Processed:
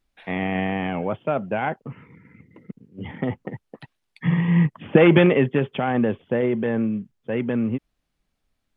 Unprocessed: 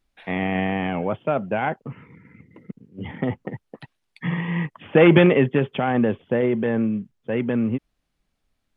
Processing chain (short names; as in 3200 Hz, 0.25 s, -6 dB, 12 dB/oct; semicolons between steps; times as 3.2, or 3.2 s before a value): 4.25–4.95 bell 76 Hz -> 210 Hz +10.5 dB 2.4 oct; gain -1 dB